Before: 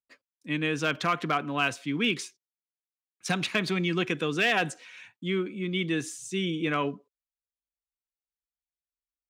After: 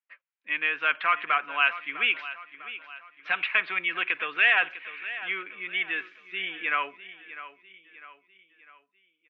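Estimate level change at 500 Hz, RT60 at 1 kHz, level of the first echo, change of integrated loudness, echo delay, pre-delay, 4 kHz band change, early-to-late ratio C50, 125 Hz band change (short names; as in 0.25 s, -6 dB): -10.0 dB, none, -14.5 dB, +2.5 dB, 0.651 s, none, -0.5 dB, none, under -25 dB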